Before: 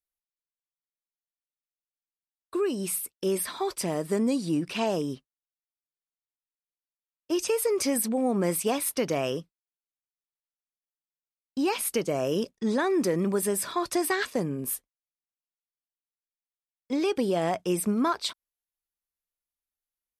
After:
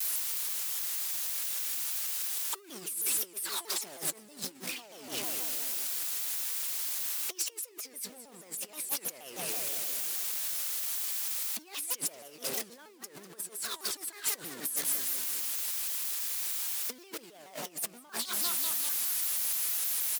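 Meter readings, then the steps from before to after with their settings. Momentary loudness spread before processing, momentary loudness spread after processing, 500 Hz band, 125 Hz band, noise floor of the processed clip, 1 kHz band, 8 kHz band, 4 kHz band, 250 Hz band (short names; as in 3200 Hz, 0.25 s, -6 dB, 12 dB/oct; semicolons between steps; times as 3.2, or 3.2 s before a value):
6 LU, 11 LU, -20.0 dB, -21.0 dB, -54 dBFS, -12.5 dB, +3.5 dB, +2.0 dB, -22.5 dB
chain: zero-crossing step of -29 dBFS; HPF 260 Hz 6 dB/oct; feedback echo 0.198 s, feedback 59%, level -11 dB; negative-ratio compressor -32 dBFS, ratio -0.5; tilt +3 dB/oct; shaped vibrato saw down 6.3 Hz, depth 250 cents; gain -8.5 dB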